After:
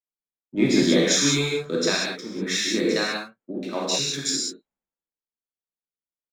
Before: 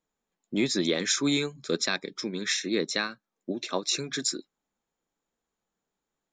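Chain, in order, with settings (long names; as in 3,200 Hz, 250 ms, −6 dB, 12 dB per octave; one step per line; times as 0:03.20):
adaptive Wiener filter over 9 samples
reverb whose tail is shaped and stops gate 220 ms flat, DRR −5 dB
multiband upward and downward expander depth 70%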